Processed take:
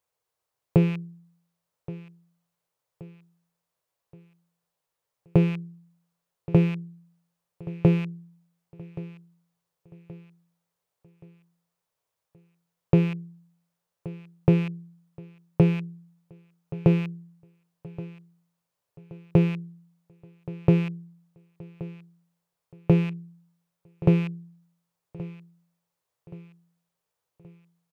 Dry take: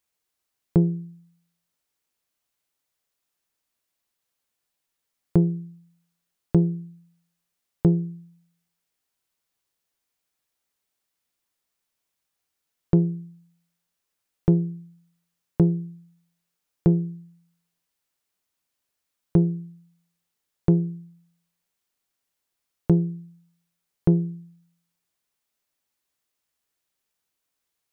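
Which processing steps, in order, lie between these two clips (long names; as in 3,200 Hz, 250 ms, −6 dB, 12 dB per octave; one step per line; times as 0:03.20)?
loose part that buzzes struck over −29 dBFS, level −25 dBFS
octave-band graphic EQ 125/250/500/1,000 Hz +11/−7/+11/+7 dB
repeating echo 1,125 ms, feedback 44%, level −17.5 dB
level −5 dB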